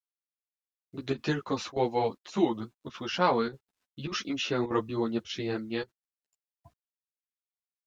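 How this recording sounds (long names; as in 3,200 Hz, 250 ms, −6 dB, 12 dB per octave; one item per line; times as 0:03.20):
a quantiser's noise floor 12 bits, dither none
chopped level 1.7 Hz, depth 65%, duty 90%
a shimmering, thickened sound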